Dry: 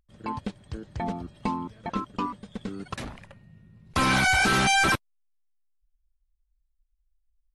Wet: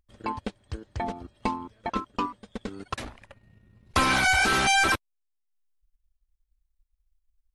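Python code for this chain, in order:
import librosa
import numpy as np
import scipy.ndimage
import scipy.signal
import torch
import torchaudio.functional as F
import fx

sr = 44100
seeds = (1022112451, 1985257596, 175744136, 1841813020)

y = fx.transient(x, sr, attack_db=4, sustain_db=-7)
y = fx.peak_eq(y, sr, hz=160.0, db=-12.0, octaves=0.7)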